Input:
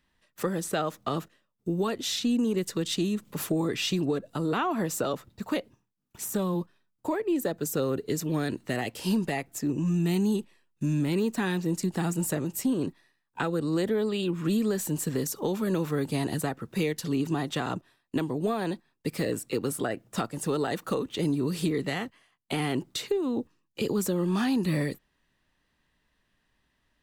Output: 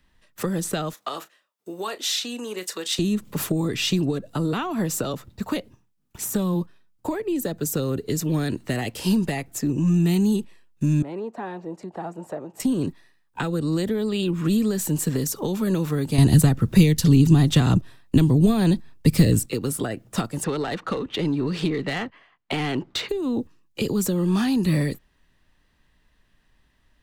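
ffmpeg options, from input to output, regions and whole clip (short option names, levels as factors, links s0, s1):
-filter_complex "[0:a]asettb=1/sr,asplit=3[s0][s1][s2];[s0]atrim=end=0.934[s3];[s1]atrim=start=0.93:end=2.99,asetpts=PTS-STARTPTS,afade=t=in:d=0.004:c=qsin,afade=t=out:st=2.056:d=0.004:c=qsin,highpass=630,asplit=2[s4][s5];[s5]adelay=33,volume=0.2[s6];[s4][s6]amix=inputs=2:normalize=0,atrim=end_sample=90846[s7];[s2]atrim=start=2.986[s8];[s3][s7]acrossfade=d=0.004:c1=hsin:c2=qsin[s9];[s9][s8]acrossfade=d=0.004:c1=qsin:c2=hsin,asettb=1/sr,asplit=3[s10][s11][s12];[s10]atrim=end=11.024[s13];[s11]atrim=start=11.02:end=12.6,asetpts=PTS-STARTPTS,afade=t=in:d=0.004:c=qsin,afade=t=out:st=1.576:d=0.004:c=qsin,bandpass=f=690:t=q:w=2.1,acompressor=mode=upward:threshold=0.00794:ratio=2.5:attack=3.2:release=140:knee=2.83:detection=peak[s14];[s12]atrim=start=12.596[s15];[s13][s14]acrossfade=d=0.004:c1=hsin:c2=qsin[s16];[s16][s15]acrossfade=d=0.004:c1=qsin:c2=hsin,asettb=1/sr,asplit=3[s17][s18][s19];[s17]atrim=end=16.184[s20];[s18]atrim=start=16.18:end=19.46,asetpts=PTS-STARTPTS,afade=t=in:d=0.004:c=qsin,afade=t=out:st=3.276:d=0.004:c=qsin,lowshelf=f=150:g=11.5,acontrast=48[s21];[s19]atrim=start=19.456[s22];[s20][s21]acrossfade=d=0.004:c1=hsin:c2=qsin[s23];[s23][s22]acrossfade=d=0.004:c1=qsin:c2=hsin,asettb=1/sr,asplit=3[s24][s25][s26];[s24]atrim=end=20.444[s27];[s25]atrim=start=20.44:end=23.09,asetpts=PTS-STARTPTS,afade=t=in:d=0.004:c=qsin,afade=t=out:st=2.646:d=0.004:c=qsin,adynamicsmooth=sensitivity=7.5:basefreq=3500,asplit=2[s28][s29];[s29]highpass=f=720:p=1,volume=3.98,asoftclip=type=tanh:threshold=0.141[s30];[s28][s30]amix=inputs=2:normalize=0,lowpass=f=2800:p=1,volume=0.501[s31];[s26]atrim=start=23.086[s32];[s27][s31]acrossfade=d=0.004:c1=hsin:c2=qsin[s33];[s33][s32]acrossfade=d=0.004:c1=qsin:c2=hsin,lowshelf=f=77:g=10,acrossover=split=250|3000[s34][s35][s36];[s35]acompressor=threshold=0.0251:ratio=6[s37];[s34][s37][s36]amix=inputs=3:normalize=0,volume=1.88"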